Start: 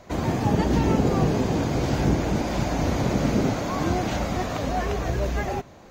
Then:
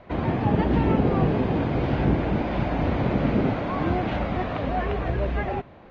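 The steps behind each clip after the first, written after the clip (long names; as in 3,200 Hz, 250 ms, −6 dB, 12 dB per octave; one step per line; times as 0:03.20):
low-pass filter 3,200 Hz 24 dB per octave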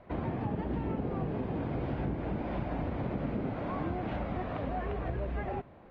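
high-shelf EQ 2,800 Hz −9 dB
downward compressor, threshold −24 dBFS, peak gain reduction 8 dB
level −6 dB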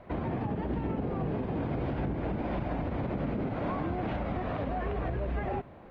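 brickwall limiter −28 dBFS, peak gain reduction 6.5 dB
level +4 dB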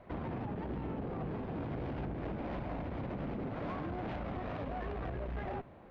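tube saturation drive 31 dB, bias 0.5
level −2.5 dB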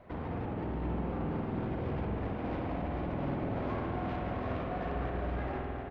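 single-tap delay 731 ms −6.5 dB
spring reverb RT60 2.9 s, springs 48 ms, chirp 40 ms, DRR 0 dB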